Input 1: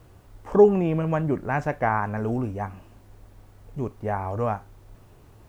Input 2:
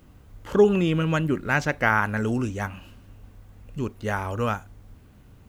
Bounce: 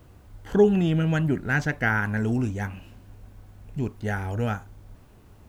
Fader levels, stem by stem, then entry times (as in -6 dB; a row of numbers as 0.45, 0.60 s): -2.5, -4.0 dB; 0.00, 0.00 s